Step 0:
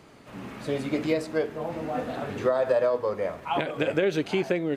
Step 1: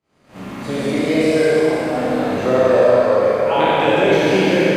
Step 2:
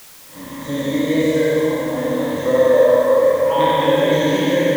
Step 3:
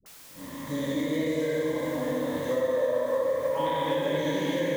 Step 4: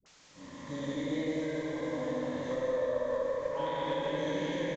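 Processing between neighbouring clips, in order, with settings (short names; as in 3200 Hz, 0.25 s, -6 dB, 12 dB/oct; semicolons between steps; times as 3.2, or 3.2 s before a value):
spectral trails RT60 1.63 s; Schroeder reverb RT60 2.9 s, combs from 32 ms, DRR -5 dB; expander -35 dBFS; gain +1.5 dB
ripple EQ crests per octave 1.1, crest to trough 16 dB; added noise white -37 dBFS; gain -5 dB
compressor 3:1, threshold -18 dBFS, peak gain reduction 7.5 dB; dispersion highs, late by 61 ms, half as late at 480 Hz; gain -7 dB
added harmonics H 2 -17 dB, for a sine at -15.5 dBFS; on a send: echo 0.165 s -5 dB; on the sum: downsampling 16000 Hz; gain -7 dB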